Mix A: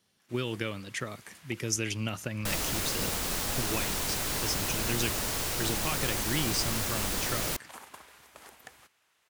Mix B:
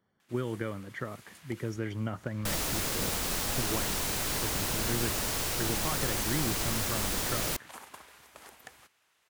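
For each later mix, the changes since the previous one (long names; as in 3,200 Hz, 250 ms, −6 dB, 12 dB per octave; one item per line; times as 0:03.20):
speech: add Savitzky-Golay smoothing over 41 samples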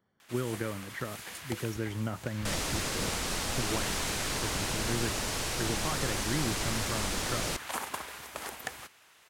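first sound +11.5 dB
second sound: add low-pass filter 9,300 Hz 12 dB per octave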